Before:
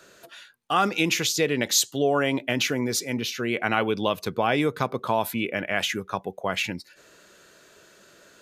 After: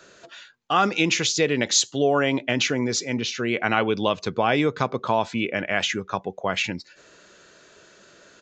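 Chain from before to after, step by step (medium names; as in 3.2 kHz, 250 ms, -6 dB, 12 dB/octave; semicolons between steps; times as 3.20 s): resampled via 16 kHz; trim +2 dB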